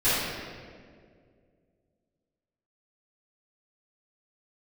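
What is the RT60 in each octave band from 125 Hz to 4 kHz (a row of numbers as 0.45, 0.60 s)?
2.6, 2.6, 2.5, 1.7, 1.6, 1.2 s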